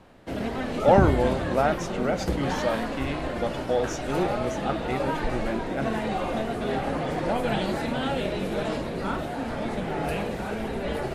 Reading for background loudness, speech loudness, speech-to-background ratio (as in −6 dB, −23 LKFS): −29.0 LKFS, −28.0 LKFS, 1.0 dB